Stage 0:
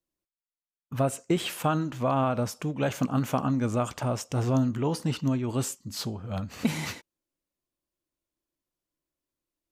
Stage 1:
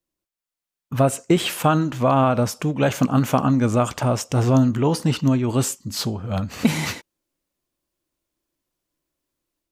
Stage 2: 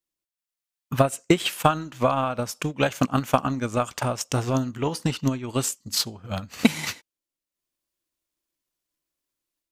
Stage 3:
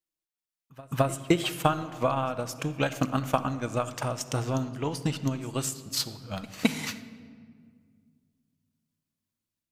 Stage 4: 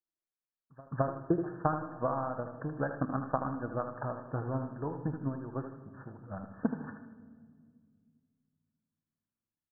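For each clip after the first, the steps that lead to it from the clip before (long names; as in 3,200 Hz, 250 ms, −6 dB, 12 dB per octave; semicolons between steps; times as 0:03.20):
automatic gain control gain up to 4.5 dB; level +3.5 dB
tilt shelving filter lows −4.5 dB, about 1,100 Hz; transient designer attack +11 dB, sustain −6 dB; level −6.5 dB
echo ahead of the sound 214 ms −22 dB; rectangular room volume 3,100 cubic metres, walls mixed, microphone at 0.61 metres; level −5 dB
linear-phase brick-wall low-pass 1,800 Hz; repeating echo 78 ms, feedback 41%, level −8.5 dB; level −6 dB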